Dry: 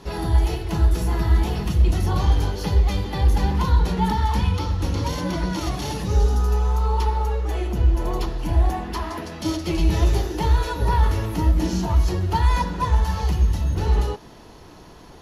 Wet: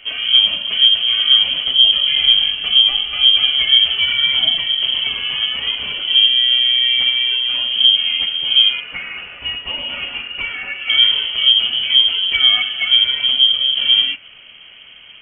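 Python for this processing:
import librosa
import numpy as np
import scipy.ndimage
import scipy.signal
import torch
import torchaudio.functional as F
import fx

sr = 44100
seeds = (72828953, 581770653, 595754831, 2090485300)

y = fx.highpass(x, sr, hz=290.0, slope=12, at=(8.8, 10.9))
y = fx.freq_invert(y, sr, carrier_hz=3200)
y = y * 10.0 ** (3.0 / 20.0)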